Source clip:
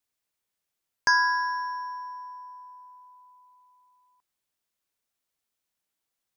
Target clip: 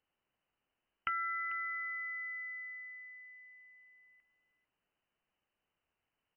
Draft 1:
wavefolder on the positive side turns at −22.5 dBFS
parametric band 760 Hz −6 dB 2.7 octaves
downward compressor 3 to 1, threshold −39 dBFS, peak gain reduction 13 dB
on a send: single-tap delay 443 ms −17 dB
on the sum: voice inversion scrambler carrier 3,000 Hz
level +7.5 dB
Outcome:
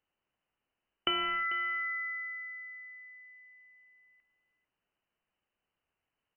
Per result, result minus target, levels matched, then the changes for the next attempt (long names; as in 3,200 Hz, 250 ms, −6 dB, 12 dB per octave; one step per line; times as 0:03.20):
wavefolder on the positive side: distortion +24 dB; downward compressor: peak gain reduction −5.5 dB
change: wavefolder on the positive side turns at −13 dBFS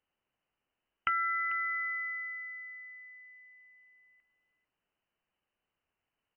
downward compressor: peak gain reduction −5.5 dB
change: downward compressor 3 to 1, threshold −47 dBFS, peak gain reduction 18.5 dB